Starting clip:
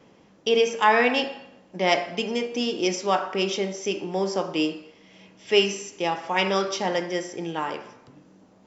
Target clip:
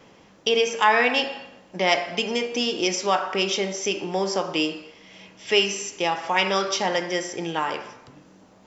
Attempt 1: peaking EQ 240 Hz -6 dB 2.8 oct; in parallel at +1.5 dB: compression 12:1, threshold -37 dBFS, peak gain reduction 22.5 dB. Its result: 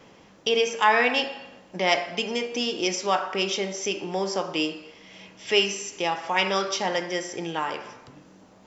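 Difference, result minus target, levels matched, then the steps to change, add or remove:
compression: peak gain reduction +8 dB
change: compression 12:1, threshold -28.5 dBFS, peak gain reduction 14.5 dB

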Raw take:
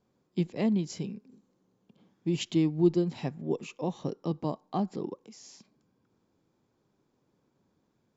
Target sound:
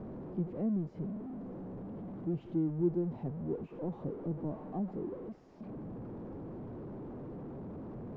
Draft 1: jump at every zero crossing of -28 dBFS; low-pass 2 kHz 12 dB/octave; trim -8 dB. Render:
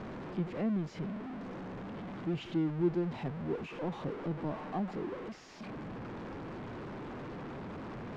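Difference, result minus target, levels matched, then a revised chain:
2 kHz band +16.5 dB
jump at every zero crossing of -28 dBFS; low-pass 580 Hz 12 dB/octave; trim -8 dB

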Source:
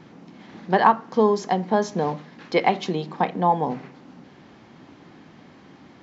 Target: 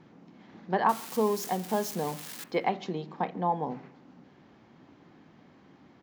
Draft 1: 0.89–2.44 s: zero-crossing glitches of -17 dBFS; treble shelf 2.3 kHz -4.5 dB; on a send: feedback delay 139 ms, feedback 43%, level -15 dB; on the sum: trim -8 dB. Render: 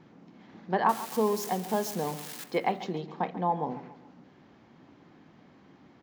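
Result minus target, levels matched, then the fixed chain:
echo-to-direct +11.5 dB
0.89–2.44 s: zero-crossing glitches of -17 dBFS; treble shelf 2.3 kHz -4.5 dB; on a send: feedback delay 139 ms, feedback 43%, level -26.5 dB; on the sum: trim -8 dB

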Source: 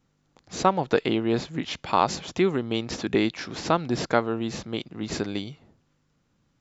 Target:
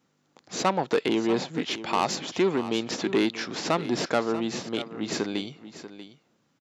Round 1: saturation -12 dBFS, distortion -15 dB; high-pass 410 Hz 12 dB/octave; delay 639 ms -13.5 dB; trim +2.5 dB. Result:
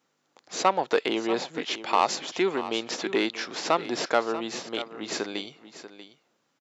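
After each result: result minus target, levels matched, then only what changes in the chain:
250 Hz band -4.5 dB; saturation: distortion -6 dB
change: high-pass 200 Hz 12 dB/octave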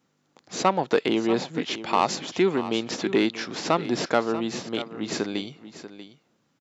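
saturation: distortion -6 dB
change: saturation -18 dBFS, distortion -10 dB

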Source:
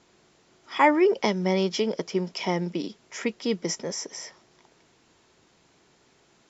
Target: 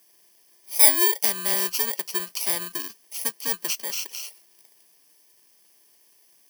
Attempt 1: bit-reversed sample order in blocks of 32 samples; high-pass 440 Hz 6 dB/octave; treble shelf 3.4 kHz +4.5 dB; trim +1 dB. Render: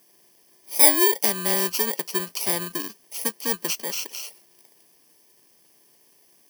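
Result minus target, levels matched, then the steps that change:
500 Hz band +6.5 dB
change: high-pass 1.3 kHz 6 dB/octave

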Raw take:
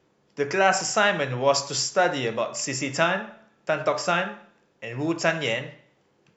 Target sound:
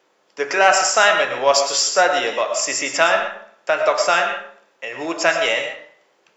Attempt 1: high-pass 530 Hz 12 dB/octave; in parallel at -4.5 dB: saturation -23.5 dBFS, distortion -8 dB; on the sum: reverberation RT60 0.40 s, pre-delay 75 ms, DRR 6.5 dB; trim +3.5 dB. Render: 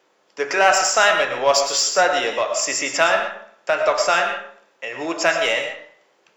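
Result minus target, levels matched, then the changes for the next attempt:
saturation: distortion +9 dB
change: saturation -14.5 dBFS, distortion -16 dB

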